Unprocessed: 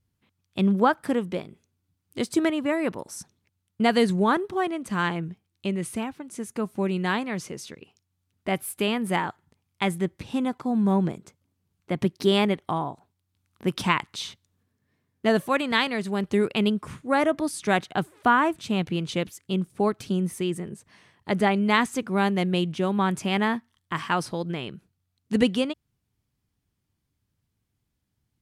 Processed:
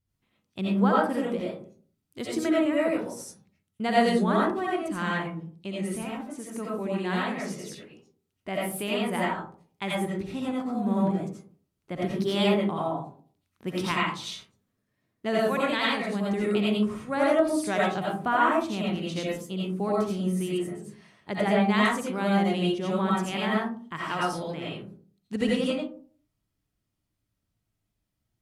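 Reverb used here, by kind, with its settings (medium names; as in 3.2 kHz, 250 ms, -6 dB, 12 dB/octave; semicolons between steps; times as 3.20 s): algorithmic reverb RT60 0.47 s, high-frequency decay 0.35×, pre-delay 45 ms, DRR -5.5 dB; trim -8 dB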